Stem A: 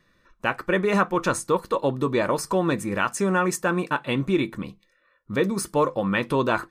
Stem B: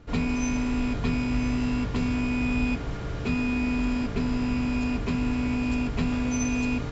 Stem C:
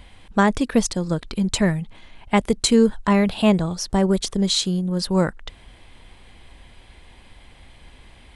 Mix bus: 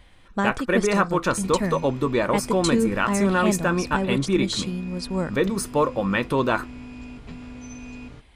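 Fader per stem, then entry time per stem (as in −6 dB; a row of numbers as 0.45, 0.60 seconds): +0.5, −12.5, −7.0 decibels; 0.00, 1.30, 0.00 seconds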